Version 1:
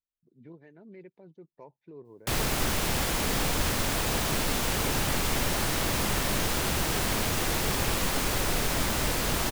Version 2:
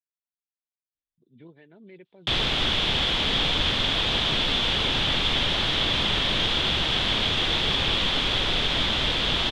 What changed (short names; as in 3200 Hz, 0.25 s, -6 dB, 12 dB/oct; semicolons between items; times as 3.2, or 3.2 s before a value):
speech: entry +0.95 s; master: add synth low-pass 3400 Hz, resonance Q 7.3